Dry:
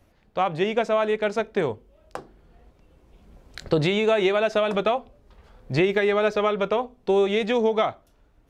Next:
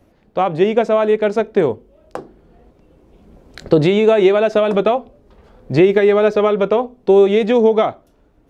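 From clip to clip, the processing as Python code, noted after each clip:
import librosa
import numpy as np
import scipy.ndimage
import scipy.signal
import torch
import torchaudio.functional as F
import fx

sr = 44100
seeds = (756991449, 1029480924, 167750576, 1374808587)

y = fx.peak_eq(x, sr, hz=320.0, db=9.0, octaves=2.6)
y = y * 10.0 ** (1.5 / 20.0)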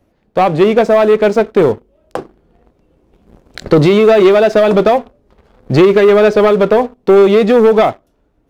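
y = fx.leveller(x, sr, passes=2)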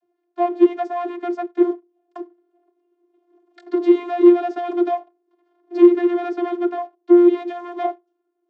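y = fx.vocoder(x, sr, bands=32, carrier='saw', carrier_hz=350.0)
y = y * 10.0 ** (-7.5 / 20.0)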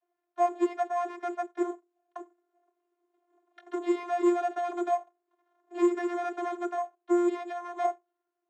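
y = np.repeat(x[::6], 6)[:len(x)]
y = fx.bandpass_edges(y, sr, low_hz=670.0, high_hz=2500.0)
y = y * 10.0 ** (-2.0 / 20.0)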